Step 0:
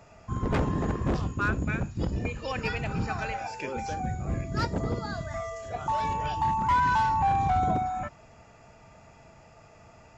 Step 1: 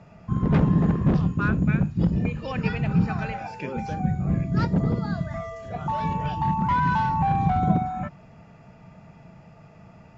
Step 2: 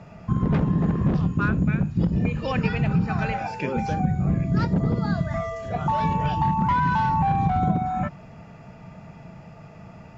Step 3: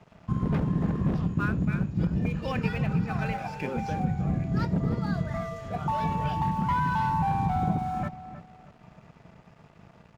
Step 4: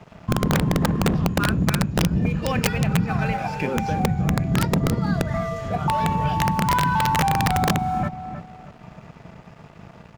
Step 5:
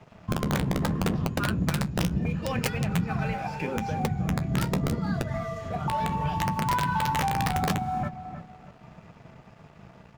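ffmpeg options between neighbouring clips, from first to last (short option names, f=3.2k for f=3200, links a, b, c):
-af "lowpass=4.2k,equalizer=f=170:t=o:w=0.91:g=14"
-af "acompressor=threshold=-23dB:ratio=6,volume=5dB"
-filter_complex "[0:a]aeval=exprs='sgn(val(0))*max(abs(val(0))-0.00501,0)':c=same,asplit=2[a][b];[b]adelay=314,lowpass=f=2.6k:p=1,volume=-12dB,asplit=2[c][d];[d]adelay=314,lowpass=f=2.6k:p=1,volume=0.3,asplit=2[e][f];[f]adelay=314,lowpass=f=2.6k:p=1,volume=0.3[g];[c][e][g]amix=inputs=3:normalize=0[h];[a][h]amix=inputs=2:normalize=0,volume=-4.5dB"
-filter_complex "[0:a]asplit=2[a][b];[b]acompressor=threshold=-32dB:ratio=20,volume=-0.5dB[c];[a][c]amix=inputs=2:normalize=0,aeval=exprs='(mod(5.96*val(0)+1,2)-1)/5.96':c=same,volume=3.5dB"
-af "flanger=delay=7.9:depth=7.8:regen=-47:speed=0.75:shape=sinusoidal,volume=-2dB"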